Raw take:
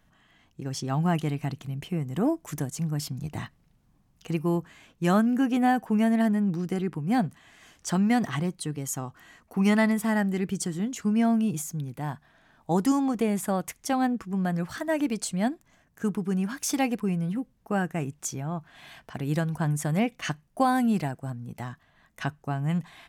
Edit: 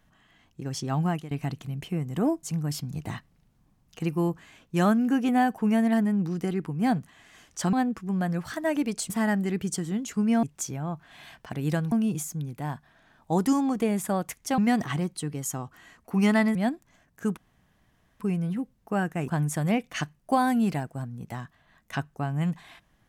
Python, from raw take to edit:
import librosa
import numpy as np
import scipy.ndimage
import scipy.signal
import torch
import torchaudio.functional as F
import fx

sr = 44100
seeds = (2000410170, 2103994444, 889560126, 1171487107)

y = fx.edit(x, sr, fx.fade_out_to(start_s=1.02, length_s=0.29, floor_db=-19.0),
    fx.cut(start_s=2.43, length_s=0.28),
    fx.swap(start_s=8.01, length_s=1.97, other_s=13.97, other_length_s=1.37),
    fx.room_tone_fill(start_s=16.16, length_s=0.83),
    fx.move(start_s=18.07, length_s=1.49, to_s=11.31), tone=tone)